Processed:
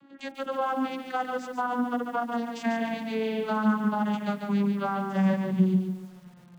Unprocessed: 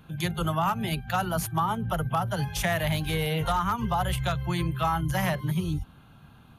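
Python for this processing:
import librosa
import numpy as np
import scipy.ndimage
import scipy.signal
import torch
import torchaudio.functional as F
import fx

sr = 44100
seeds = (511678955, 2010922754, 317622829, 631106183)

y = fx.vocoder_glide(x, sr, note=61, semitones=-8)
y = fx.echo_crushed(y, sr, ms=144, feedback_pct=35, bits=9, wet_db=-5.5)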